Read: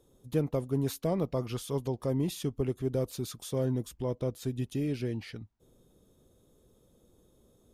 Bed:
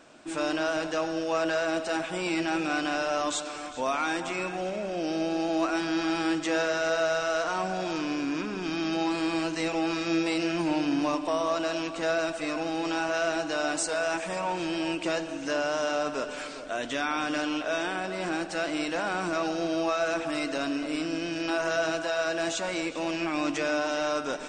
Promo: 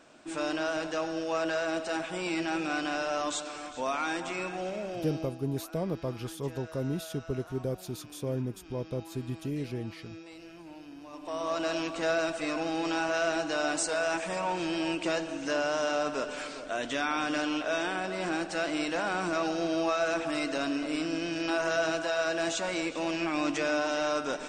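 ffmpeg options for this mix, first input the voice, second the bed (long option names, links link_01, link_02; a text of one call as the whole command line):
ffmpeg -i stem1.wav -i stem2.wav -filter_complex "[0:a]adelay=4700,volume=-2.5dB[link_01];[1:a]volume=16.5dB,afade=type=out:start_time=4.81:duration=0.58:silence=0.133352,afade=type=in:start_time=11.1:duration=0.6:silence=0.105925[link_02];[link_01][link_02]amix=inputs=2:normalize=0" out.wav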